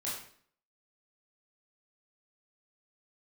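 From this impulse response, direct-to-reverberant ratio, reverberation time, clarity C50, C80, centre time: -7.5 dB, 0.55 s, 3.0 dB, 6.5 dB, 47 ms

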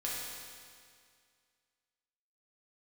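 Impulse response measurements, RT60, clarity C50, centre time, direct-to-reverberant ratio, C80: 2.1 s, -1.5 dB, 0.125 s, -6.0 dB, 0.5 dB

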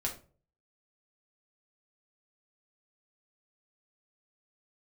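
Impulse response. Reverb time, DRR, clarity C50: not exponential, -1.5 dB, 10.5 dB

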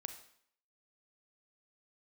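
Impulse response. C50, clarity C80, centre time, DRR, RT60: 9.5 dB, 12.5 dB, 12 ms, 7.5 dB, 0.65 s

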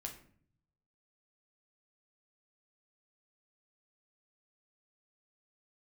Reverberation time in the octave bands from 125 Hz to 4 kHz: 1.2, 0.85, 0.60, 0.50, 0.50, 0.35 s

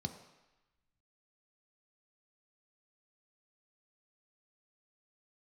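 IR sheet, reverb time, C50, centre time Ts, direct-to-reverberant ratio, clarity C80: 1.0 s, 10.0 dB, 16 ms, 6.0 dB, 11.5 dB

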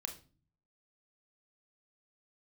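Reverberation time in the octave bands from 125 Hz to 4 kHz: 0.85, 0.70, 0.40, 0.35, 0.30, 0.30 s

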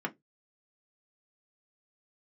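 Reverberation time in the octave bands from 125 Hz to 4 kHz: 0.30, 0.20, 0.20, 0.10, 0.15, 0.15 s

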